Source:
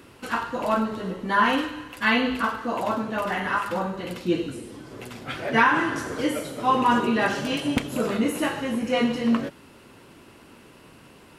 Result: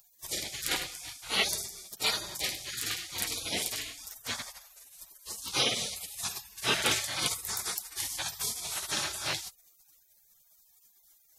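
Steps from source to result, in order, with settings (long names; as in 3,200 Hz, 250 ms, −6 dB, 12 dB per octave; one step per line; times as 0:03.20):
tilt shelving filter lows −9 dB, about 820 Hz
gate on every frequency bin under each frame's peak −25 dB weak
level +7.5 dB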